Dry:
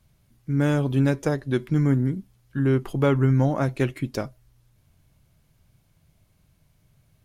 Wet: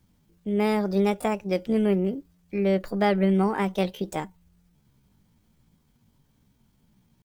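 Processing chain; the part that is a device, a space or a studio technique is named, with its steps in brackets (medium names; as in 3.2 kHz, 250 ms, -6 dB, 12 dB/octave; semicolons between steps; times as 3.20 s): chipmunk voice (pitch shift +6.5 st); trim -2 dB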